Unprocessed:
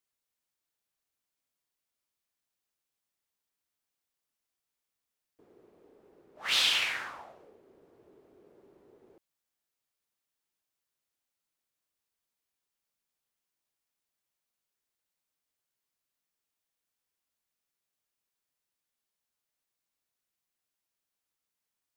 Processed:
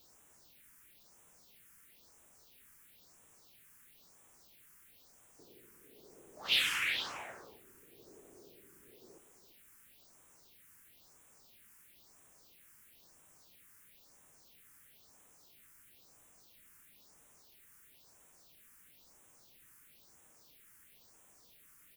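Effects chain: added noise white -61 dBFS; delay 338 ms -11.5 dB; phase shifter stages 4, 1 Hz, lowest notch 630–4400 Hz

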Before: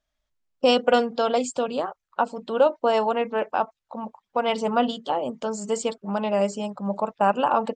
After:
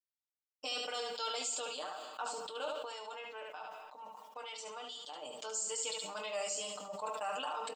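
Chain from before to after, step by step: gate with hold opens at -48 dBFS; differentiator; hum notches 50/100/150/200 Hz; comb 6.6 ms, depth 98%; peak limiter -29 dBFS, peak gain reduction 11.5 dB; 2.65–5.22 s: compression 2.5:1, threshold -47 dBFS, peak gain reduction 8.5 dB; feedback comb 360 Hz, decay 0.76 s, mix 40%; hard clipper -34 dBFS, distortion -39 dB; early reflections 23 ms -11 dB, 73 ms -8 dB; reverberation RT60 1.1 s, pre-delay 100 ms, DRR 17.5 dB; decay stretcher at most 29 dB/s; trim +4 dB

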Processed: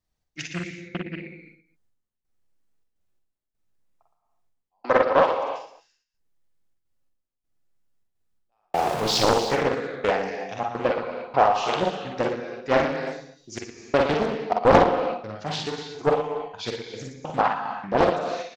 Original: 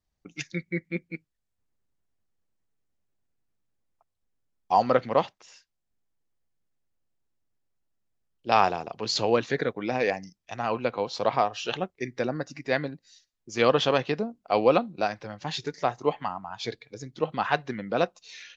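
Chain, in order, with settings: 8.58–9.24 s: jump at every zero crossing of -30 dBFS; dynamic bell 810 Hz, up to +7 dB, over -34 dBFS, Q 0.78; trance gate "xx.xx...xxx" 127 bpm -60 dB; saturation -6.5 dBFS, distortion -19 dB; 4.83–5.24 s: Chebyshev band-pass 290–4800 Hz, order 4; multi-tap echo 46/57/116/255 ms -4.5/-6.5/-9/-19 dB; gated-style reverb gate 360 ms flat, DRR 6 dB; loudspeaker Doppler distortion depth 0.76 ms

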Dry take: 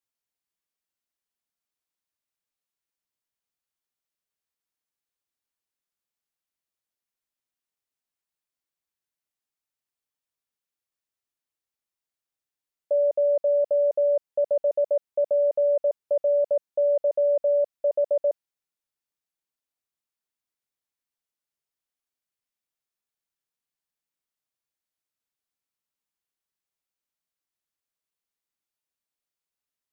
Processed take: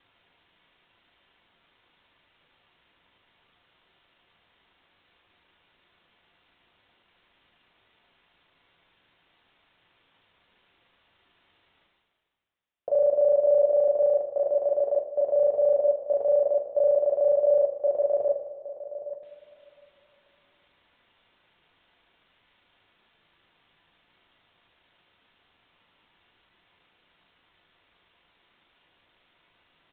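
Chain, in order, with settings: time reversed locally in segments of 37 ms; on a send: delay 96 ms -22 dB; on the sum: resampled via 8 kHz; echo from a far wall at 140 m, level -13 dB; reverse; upward compressor, threshold -43 dBFS; reverse; two-slope reverb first 0.23 s, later 2.9 s, from -18 dB, DRR 1.5 dB; trim -1.5 dB

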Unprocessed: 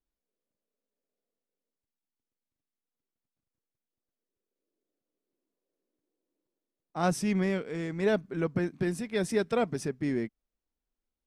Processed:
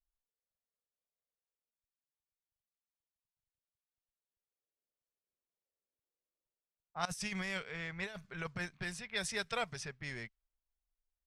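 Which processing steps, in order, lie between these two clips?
level-controlled noise filter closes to 820 Hz, open at -23.5 dBFS; amplifier tone stack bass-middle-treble 10-0-10; 7.05–8.66 s: compressor with a negative ratio -44 dBFS, ratio -0.5; trim +5 dB

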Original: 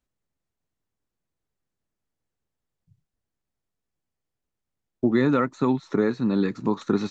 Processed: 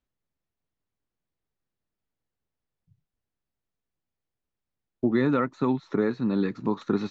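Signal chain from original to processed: low-pass 4.7 kHz 12 dB/octave; trim -2.5 dB

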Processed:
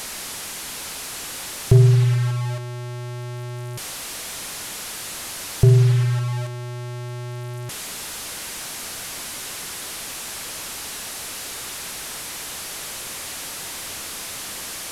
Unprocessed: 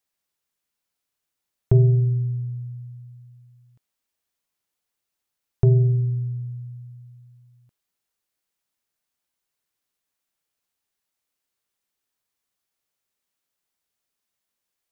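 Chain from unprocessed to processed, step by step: one-bit delta coder 64 kbps, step -28 dBFS; trim +3 dB

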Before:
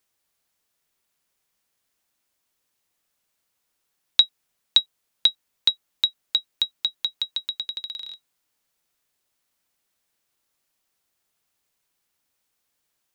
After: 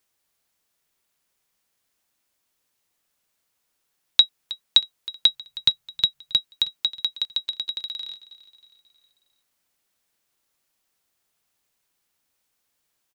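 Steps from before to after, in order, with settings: 5.28–6.37 s: resonant low shelf 200 Hz +8.5 dB, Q 3; feedback delay 317 ms, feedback 49%, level -18 dB; trim +1 dB

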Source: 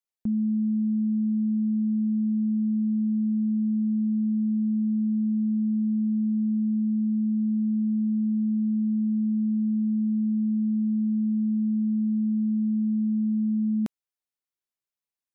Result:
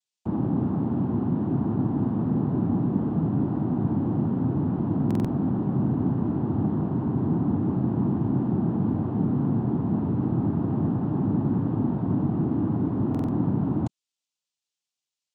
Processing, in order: noise-vocoded speech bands 4; buffer glitch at 5.06/13.10 s, samples 2048, times 3

